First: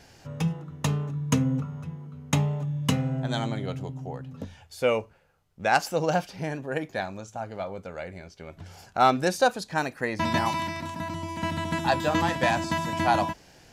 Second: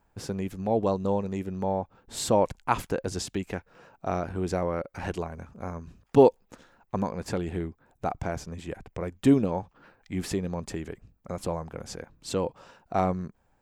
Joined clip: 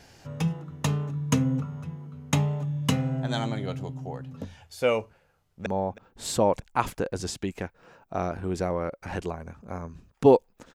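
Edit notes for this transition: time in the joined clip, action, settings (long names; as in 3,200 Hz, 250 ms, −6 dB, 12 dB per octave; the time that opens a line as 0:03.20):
first
0:05.38–0:05.66: delay throw 320 ms, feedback 50%, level −17 dB
0:05.66: continue with second from 0:01.58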